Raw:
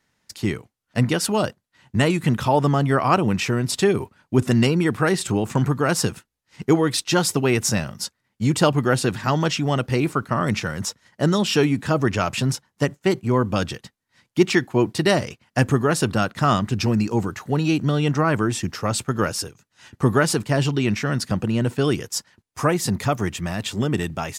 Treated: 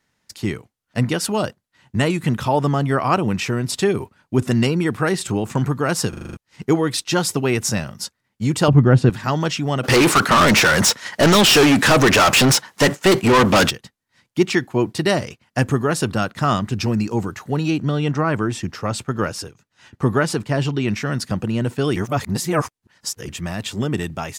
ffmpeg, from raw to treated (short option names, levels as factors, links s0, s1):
-filter_complex "[0:a]asettb=1/sr,asplit=3[s0][s1][s2];[s0]atrim=end=8.684[s3];[s1]atrim=start=8.68:end=9.1,asetpts=PTS-STARTPTS,afade=t=in:d=0.004:c=qsin,afade=t=out:st=0.416:d=0.004:c=qsin,aemphasis=mode=reproduction:type=riaa[s4];[s2]atrim=start=9.096[s5];[s3][s4]acrossfade=d=0.004:c1=hsin:c2=qsin[s6];[s6][s5]acrossfade=d=0.004:c1=qsin:c2=hsin,asplit=3[s7][s8][s9];[s7]afade=t=out:st=9.83:d=0.02[s10];[s8]asplit=2[s11][s12];[s12]highpass=f=720:p=1,volume=39.8,asoftclip=type=tanh:threshold=0.501[s13];[s11][s13]amix=inputs=2:normalize=0,lowpass=f=8000:p=1,volume=0.501,afade=t=in:st=9.83:d=0.02,afade=t=out:st=13.69:d=0.02[s14];[s9]afade=t=in:st=13.69:d=0.02[s15];[s10][s14][s15]amix=inputs=3:normalize=0,asettb=1/sr,asplit=3[s16][s17][s18];[s16]atrim=end=17.704[s19];[s17]atrim=start=17.7:end=20.88,asetpts=PTS-STARTPTS,afade=t=in:d=0.004:c=qsin,afade=t=out:st=3.176:d=0.004:c=qsin,highshelf=f=6400:g=-7.5[s20];[s18]atrim=start=20.876[s21];[s19][s20]acrossfade=d=0.004:c1=hsin:c2=qsin[s22];[s22][s21]acrossfade=d=0.004:c1=qsin:c2=hsin,asplit=10[s23][s24][s25][s26][s27][s28][s29][s30][s31][s32];[s23]atrim=end=6.132[s33];[s24]atrim=start=6.088:end=6.132[s34];[s25]atrim=start=6.088:end=6.132[s35];[s26]atrim=start=6.088:end=6.132[s36];[s27]atrim=start=6.088:end=6.132[s37];[s28]atrim=start=6.088:end=6.132[s38];[s29]atrim=start=6.088:end=6.132[s39];[s30]atrim=start=6.368:end=21.962[s40];[s31]atrim=start=21.958:end=23.292,asetpts=PTS-STARTPTS,areverse[s41];[s32]atrim=start=23.288[s42];[s33][s34]acrossfade=d=0.004:c1=hsin:c2=hsin[s43];[s43][s35]acrossfade=d=0.004:c1=hsin:c2=hsin[s44];[s44][s36]acrossfade=d=0.004:c1=hsin:c2=hsin[s45];[s45][s37]acrossfade=d=0.004:c1=hsin:c2=hsin[s46];[s46][s38]acrossfade=d=0.004:c1=hsin:c2=hsin[s47];[s47][s39]acrossfade=d=0.004:c1=hsin:c2=hsin[s48];[s48][s40]acrossfade=d=0.004:c1=hsin:c2=hsin[s49];[s49][s41]acrossfade=d=0.004:c1=hsin:c2=hsin[s50];[s50][s42]acrossfade=d=0.004:c1=hsin:c2=hsin"